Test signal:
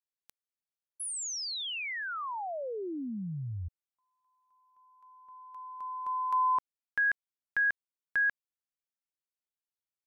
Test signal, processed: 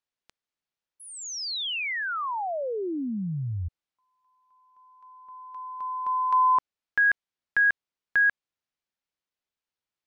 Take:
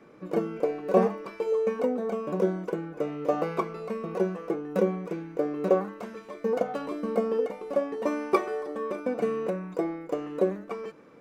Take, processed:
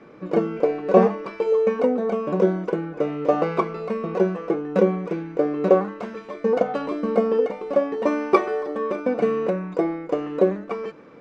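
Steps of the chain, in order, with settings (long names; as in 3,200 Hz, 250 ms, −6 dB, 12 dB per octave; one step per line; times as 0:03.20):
low-pass filter 5,000 Hz 12 dB per octave
level +6.5 dB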